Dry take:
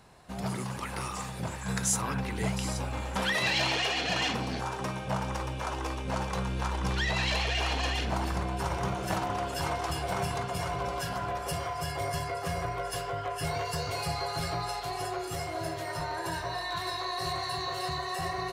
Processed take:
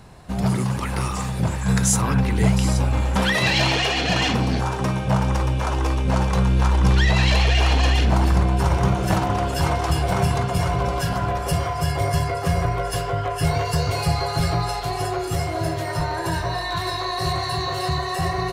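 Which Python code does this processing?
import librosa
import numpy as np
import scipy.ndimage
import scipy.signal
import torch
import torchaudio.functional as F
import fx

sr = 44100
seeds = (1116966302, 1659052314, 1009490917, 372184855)

y = fx.low_shelf(x, sr, hz=250.0, db=9.5)
y = y * 10.0 ** (7.0 / 20.0)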